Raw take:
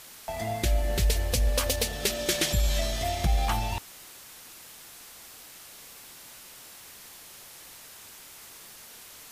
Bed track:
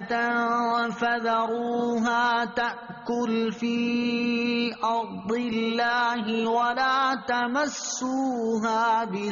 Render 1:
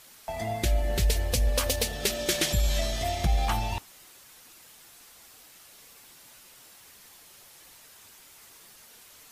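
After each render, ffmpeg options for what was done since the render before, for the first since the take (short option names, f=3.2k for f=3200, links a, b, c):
-af "afftdn=nr=6:nf=-48"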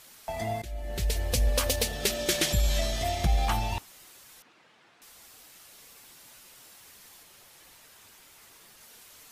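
-filter_complex "[0:a]asettb=1/sr,asplit=3[a][b][c];[a]atrim=end=4.424[d];[b]atrim=start=4.42:end=5.02,asetpts=PTS-STARTPTS,afade=t=in:d=0.004:c=qsin,afade=t=out:st=0.596:d=0.004:c=qsin,highpass=150,lowpass=2.5k[e];[c]atrim=start=5.016[f];[d][e]acrossfade=d=0.004:c1=hsin:c2=qsin[g];[g][f]acrossfade=d=0.004:c1=qsin:c2=hsin,asettb=1/sr,asplit=3[h][i][j];[h]atrim=end=7.234[k];[i]atrim=start=7.23:end=8.81,asetpts=PTS-STARTPTS,afade=t=in:d=0.004:c=qsin,afade=t=out:st=1.576:d=0.004:c=qsin,bass=f=250:g=0,treble=f=4k:g=-3[l];[j]atrim=start=8.806[m];[k][l]acrossfade=d=0.004:c1=hsin:c2=qsin[n];[n][m]acrossfade=d=0.004:c1=qsin:c2=hsin,asplit=2[o][p];[o]atrim=end=0.62,asetpts=PTS-STARTPTS,afade=t=out:st=0.616:d=0.004:c=hsin:silence=0.112202[q];[p]atrim=start=0.62,asetpts=PTS-STARTPTS,afade=t=in:d=0.78:silence=0.112202[r];[q][r]concat=n=2:v=0:a=1"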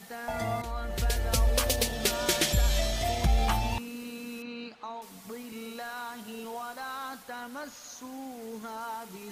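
-filter_complex "[1:a]volume=-15dB[a];[0:a][a]amix=inputs=2:normalize=0"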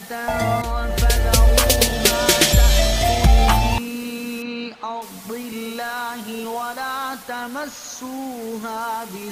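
-af "volume=11.5dB,alimiter=limit=-2dB:level=0:latency=1"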